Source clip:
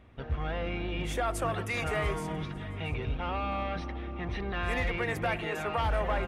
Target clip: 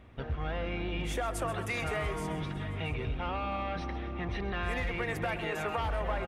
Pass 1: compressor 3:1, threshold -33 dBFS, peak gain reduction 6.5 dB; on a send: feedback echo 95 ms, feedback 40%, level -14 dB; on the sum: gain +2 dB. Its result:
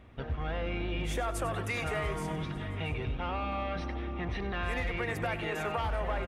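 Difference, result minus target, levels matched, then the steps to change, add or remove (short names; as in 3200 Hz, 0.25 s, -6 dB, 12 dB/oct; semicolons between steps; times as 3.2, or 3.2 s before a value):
echo 36 ms early
change: feedback echo 0.131 s, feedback 40%, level -14 dB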